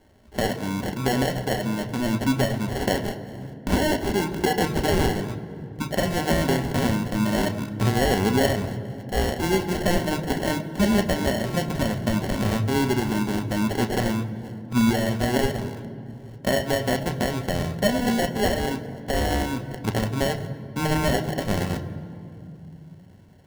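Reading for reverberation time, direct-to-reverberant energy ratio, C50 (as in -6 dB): 2.8 s, 6.5 dB, 12.0 dB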